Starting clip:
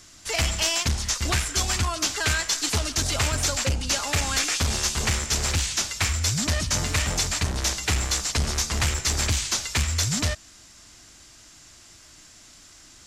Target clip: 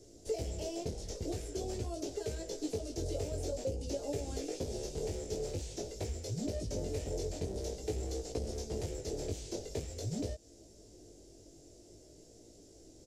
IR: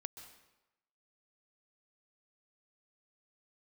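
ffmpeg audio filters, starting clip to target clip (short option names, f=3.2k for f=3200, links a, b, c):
-filter_complex "[0:a]firequalizer=gain_entry='entry(220,0);entry(430,15);entry(1100,-25);entry(5300,-10)':delay=0.05:min_phase=1,acrossover=split=900|3900[a][b][c];[a]acompressor=threshold=-33dB:ratio=4[d];[b]acompressor=threshold=-49dB:ratio=4[e];[c]acompressor=threshold=-48dB:ratio=4[f];[d][e][f]amix=inputs=3:normalize=0,flanger=delay=17.5:depth=3.5:speed=0.48"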